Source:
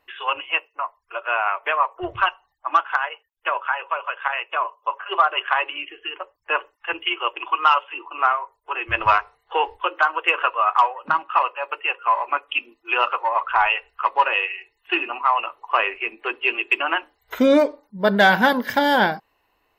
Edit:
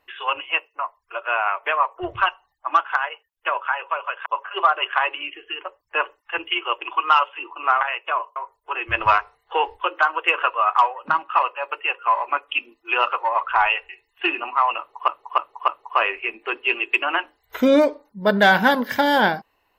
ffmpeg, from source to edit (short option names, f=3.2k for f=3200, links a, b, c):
-filter_complex "[0:a]asplit=8[a][b][c][d][e][f][g][h];[a]atrim=end=4.262[i];[b]atrim=start=4.808:end=8.362[j];[c]atrim=start=4.258:end=4.812[k];[d]atrim=start=8.358:end=13.892[l];[e]atrim=start=14.568:end=15.762[m];[f]atrim=start=15.458:end=15.762[n];[g]atrim=start=15.458:end=15.762[o];[h]atrim=start=15.458[p];[i][j]acrossfade=d=0.004:c1=hsin:c2=hsin[q];[q][k]acrossfade=d=0.004:c1=hsin:c2=hsin[r];[r][l]acrossfade=d=0.004:c1=hsin:c2=hsin[s];[s][m]acrossfade=d=0.004:c1=hsin:c2=hsin[t];[t][n]acrossfade=d=0.004:c1=hsin:c2=hsin[u];[u][o]acrossfade=d=0.004:c1=hsin:c2=hsin[v];[v][p]acrossfade=d=0.004:c1=hsin:c2=hsin"